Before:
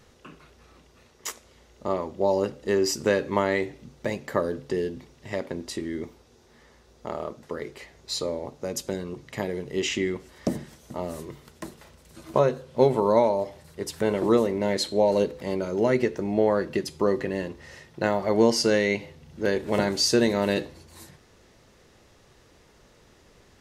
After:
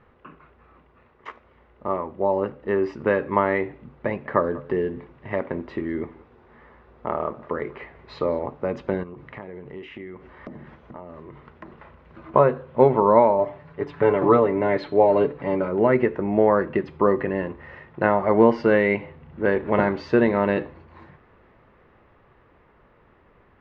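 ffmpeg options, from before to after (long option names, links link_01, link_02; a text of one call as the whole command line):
ffmpeg -i in.wav -filter_complex "[0:a]asettb=1/sr,asplit=3[link_01][link_02][link_03];[link_01]atrim=end=4.064[link_04];[link_02]atrim=start=4.06:end=8.43,asetpts=PTS-STARTPTS,afade=type=in:duration=0.004:curve=qsin,afade=type=out:start_time=4.366:duration=0.004:curve=qsin,aecho=1:1:194:0.0841,atrim=end_sample=192717[link_05];[link_03]atrim=start=8.426[link_06];[link_04][link_05]acrossfade=duration=0.004:curve1=hsin:curve2=qsin[link_07];[link_07][link_06]acrossfade=duration=0.004:curve1=qsin:curve2=hsin,asettb=1/sr,asplit=3[link_08][link_09][link_10];[link_08]atrim=end=9.034[link_11];[link_09]atrim=start=9.03:end=12.34,asetpts=PTS-STARTPTS,afade=type=in:duration=0.004:curve=qsin,afade=type=out:start_time=3.306:duration=0.004:curve=qsin,acompressor=threshold=-41dB:ratio=4:attack=3.2:release=140:knee=1:detection=peak[link_12];[link_10]atrim=start=12.336[link_13];[link_11][link_12]acrossfade=duration=0.004:curve1=hsin:curve2=qsin[link_14];[link_14][link_13]acrossfade=duration=0.004:curve1=qsin:curve2=hsin,asettb=1/sr,asplit=3[link_15][link_16][link_17];[link_15]atrim=end=13.384[link_18];[link_16]atrim=start=13.38:end=15.68,asetpts=PTS-STARTPTS,afade=type=in:duration=0.004:curve=qsin,afade=type=out:start_time=2.296:duration=0.004:curve=qsin,aecho=1:1:7:0.65,atrim=end_sample=101430[link_19];[link_17]atrim=start=15.676[link_20];[link_18][link_19]acrossfade=duration=0.004:curve1=hsin:curve2=qsin[link_21];[link_21][link_20]acrossfade=duration=0.004:curve1=qsin:curve2=hsin,lowpass=frequency=2400:width=0.5412,lowpass=frequency=2400:width=1.3066,equalizer=frequency=1100:width=1.8:gain=6,dynaudnorm=framelen=670:gausssize=11:maxgain=11.5dB,volume=-1dB" out.wav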